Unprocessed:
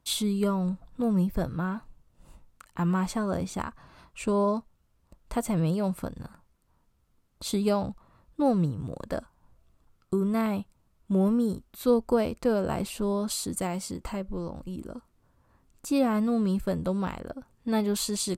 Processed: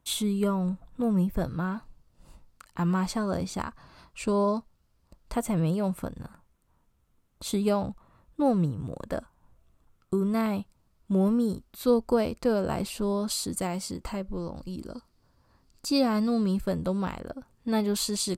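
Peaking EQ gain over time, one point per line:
peaking EQ 4.7 kHz 0.4 oct
-5.5 dB
from 1.42 s +6 dB
from 5.34 s -3.5 dB
from 10.14 s +4 dB
from 14.57 s +14.5 dB
from 16.44 s +3 dB

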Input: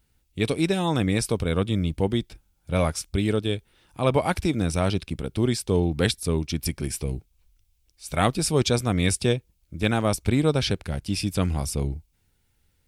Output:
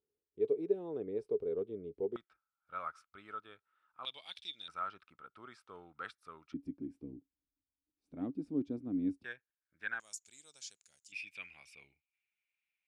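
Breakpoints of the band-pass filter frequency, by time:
band-pass filter, Q 12
420 Hz
from 2.16 s 1.3 kHz
from 4.05 s 3.5 kHz
from 4.68 s 1.3 kHz
from 6.54 s 280 Hz
from 9.24 s 1.6 kHz
from 10.00 s 6.9 kHz
from 11.12 s 2.4 kHz

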